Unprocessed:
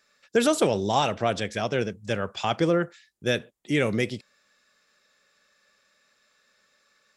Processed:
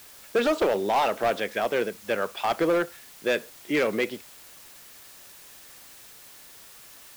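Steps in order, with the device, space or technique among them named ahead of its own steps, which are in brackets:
aircraft radio (band-pass filter 340–2,700 Hz; hard clipping −21.5 dBFS, distortion −11 dB; white noise bed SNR 20 dB)
level +3.5 dB

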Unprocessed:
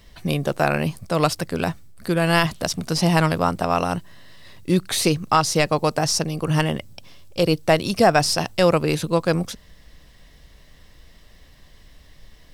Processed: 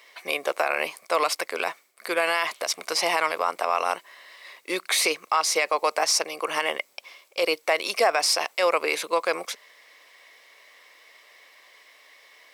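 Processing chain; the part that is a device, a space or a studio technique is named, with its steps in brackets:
laptop speaker (high-pass filter 450 Hz 24 dB per octave; parametric band 1,100 Hz +6 dB 0.39 octaves; parametric band 2,200 Hz +12 dB 0.33 octaves; brickwall limiter −11 dBFS, peak gain reduction 10.5 dB)

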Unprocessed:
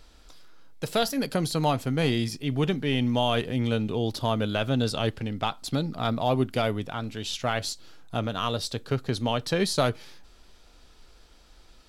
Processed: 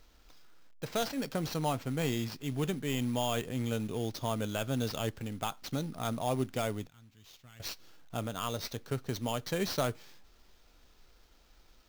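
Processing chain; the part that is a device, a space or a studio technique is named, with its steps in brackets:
0:06.87–0:07.60: guitar amp tone stack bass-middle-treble 6-0-2
early companding sampler (sample-rate reduction 10,000 Hz, jitter 0%; log-companded quantiser 6 bits)
level −7.5 dB

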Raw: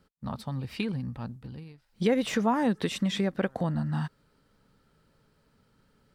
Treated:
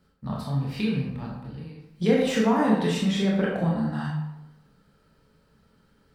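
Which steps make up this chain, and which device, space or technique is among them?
bathroom (convolution reverb RT60 0.90 s, pre-delay 20 ms, DRR −3.5 dB)
level −1.5 dB

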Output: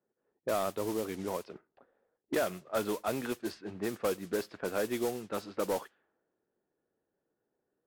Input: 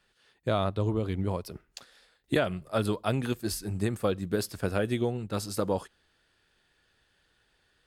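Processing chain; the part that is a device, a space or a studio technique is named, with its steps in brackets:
carbon microphone (band-pass filter 300–2,600 Hz; soft clipping −23 dBFS, distortion −15 dB; noise that follows the level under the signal 13 dB)
low-pass that shuts in the quiet parts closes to 420 Hz, open at −31.5 dBFS

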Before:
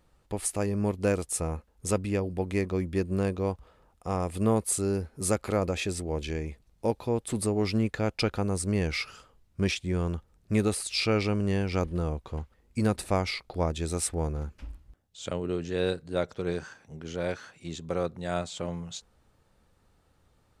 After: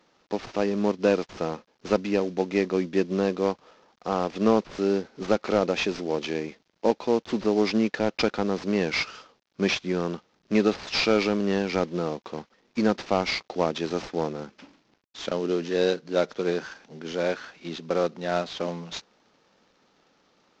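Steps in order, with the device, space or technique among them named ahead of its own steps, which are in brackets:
0:17.22–0:18.68: low-pass filter 4,500 Hz 12 dB per octave
early wireless headset (high-pass filter 200 Hz 24 dB per octave; variable-slope delta modulation 32 kbit/s)
level +6 dB

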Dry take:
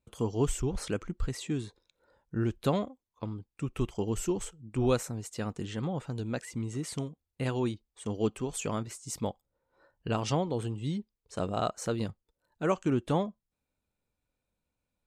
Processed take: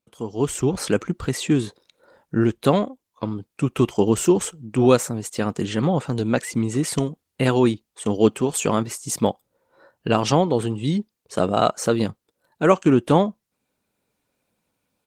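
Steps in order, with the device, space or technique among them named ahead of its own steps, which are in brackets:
video call (high-pass filter 140 Hz 12 dB per octave; automatic gain control gain up to 14.5 dB; Opus 20 kbit/s 48,000 Hz)

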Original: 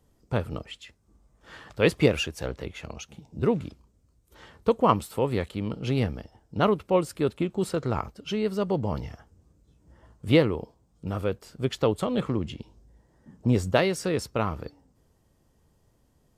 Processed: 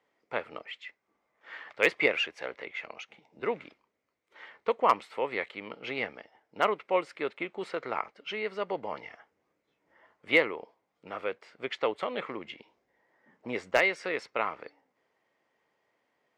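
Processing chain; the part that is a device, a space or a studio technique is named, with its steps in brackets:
megaphone (band-pass filter 550–3,200 Hz; parametric band 2,100 Hz +11.5 dB 0.43 octaves; hard clipping −10.5 dBFS, distortion −24 dB)
level −1 dB

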